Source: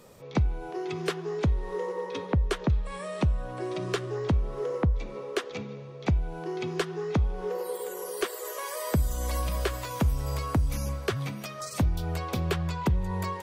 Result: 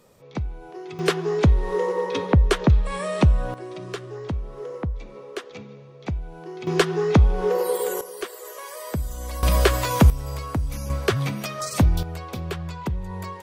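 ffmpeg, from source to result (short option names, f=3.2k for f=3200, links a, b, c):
-af "asetnsamples=n=441:p=0,asendcmd='0.99 volume volume 8.5dB;3.54 volume volume -3dB;6.67 volume volume 10dB;8.01 volume volume -2dB;9.43 volume volume 11dB;10.1 volume volume 0dB;10.9 volume volume 7.5dB;12.03 volume volume -2dB',volume=-3.5dB"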